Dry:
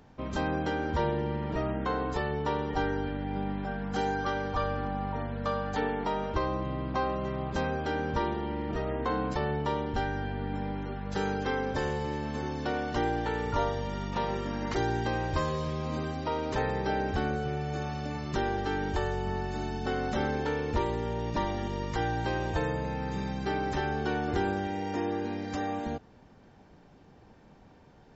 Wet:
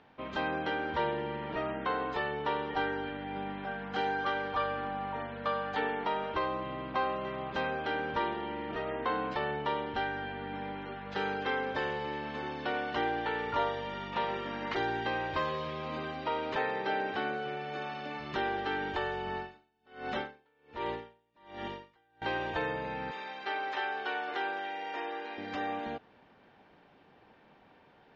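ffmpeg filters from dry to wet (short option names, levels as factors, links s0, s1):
-filter_complex "[0:a]asettb=1/sr,asplit=3[s0][s1][s2];[s0]atrim=end=16.564[s3];[s1]atrim=start=16.56:end=18.2,asetpts=PTS-STARTPTS,afade=t=in:d=0.004:c=qsin,afade=t=out:st=1.636:d=0.004:c=qsin,highpass=170[s4];[s2]atrim=start=18.196[s5];[s3][s4]acrossfade=d=0.004:c1=hsin:c2=qsin[s6];[s6][s5]acrossfade=d=0.004:c1=qsin:c2=hsin,asettb=1/sr,asplit=3[s7][s8][s9];[s7]atrim=end=19.364[s10];[s8]atrim=start=19.36:end=22.22,asetpts=PTS-STARTPTS,afade=t=in:d=0.004:c=qsin,afade=t=out:st=2.856:d=0.004:c=qsin,aeval=exprs='val(0)*pow(10,-39*(0.5-0.5*cos(2*PI*1.3*n/s))/20)':c=same[s11];[s9]atrim=start=22.216[s12];[s10][s11]acrossfade=d=0.004:c1=hsin:c2=qsin[s13];[s13][s12]acrossfade=d=0.004:c1=qsin:c2=hsin,asettb=1/sr,asplit=3[s14][s15][s16];[s14]atrim=end=23.114[s17];[s15]atrim=start=23.11:end=25.38,asetpts=PTS-STARTPTS,afade=t=in:d=0.004:c=qsin,afade=t=out:st=2.266:d=0.004:c=qsin,highpass=530[s18];[s16]atrim=start=25.376[s19];[s17][s18]acrossfade=d=0.004:c1=hsin:c2=qsin[s20];[s20][s19]acrossfade=d=0.004:c1=qsin:c2=hsin,lowpass=f=3200:w=0.5412,lowpass=f=3200:w=1.3066,aemphasis=mode=production:type=riaa"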